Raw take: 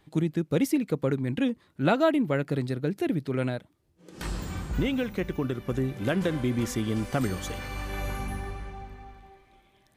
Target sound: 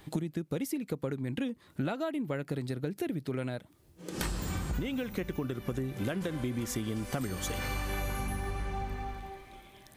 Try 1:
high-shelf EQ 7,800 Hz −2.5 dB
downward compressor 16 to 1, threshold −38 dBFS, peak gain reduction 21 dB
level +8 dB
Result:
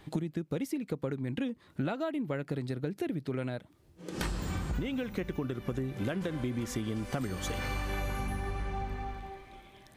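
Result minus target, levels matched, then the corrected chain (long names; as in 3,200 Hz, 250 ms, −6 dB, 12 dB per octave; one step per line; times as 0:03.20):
8,000 Hz band −4.0 dB
high-shelf EQ 7,800 Hz +7.5 dB
downward compressor 16 to 1, threshold −38 dBFS, peak gain reduction 21 dB
level +8 dB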